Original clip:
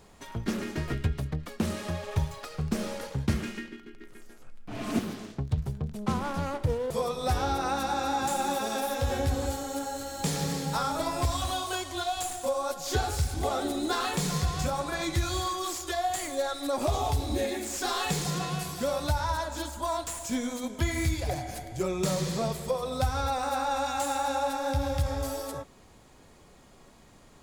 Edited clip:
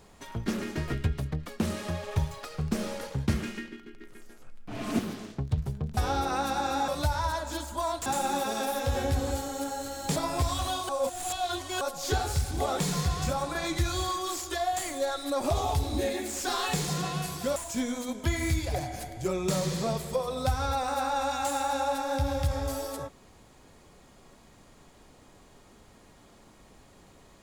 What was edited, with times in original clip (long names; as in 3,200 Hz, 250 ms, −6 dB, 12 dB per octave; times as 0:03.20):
0:05.97–0:07.30: remove
0:10.31–0:10.99: remove
0:11.72–0:12.64: reverse
0:13.62–0:14.16: remove
0:18.93–0:20.11: move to 0:08.21